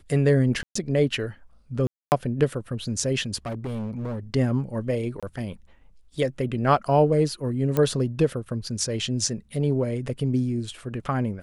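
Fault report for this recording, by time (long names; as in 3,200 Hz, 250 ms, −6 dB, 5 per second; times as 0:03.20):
0:00.63–0:00.75: drop-out 124 ms
0:01.87–0:02.12: drop-out 249 ms
0:03.46–0:04.19: clipping −27 dBFS
0:05.20–0:05.23: drop-out 26 ms
0:07.77: click −11 dBFS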